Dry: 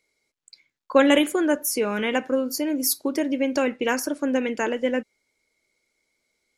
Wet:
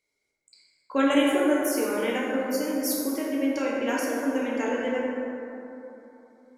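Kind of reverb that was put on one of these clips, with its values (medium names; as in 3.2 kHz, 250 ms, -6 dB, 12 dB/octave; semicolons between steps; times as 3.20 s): plate-style reverb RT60 3.2 s, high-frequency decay 0.35×, DRR -5 dB; trim -9 dB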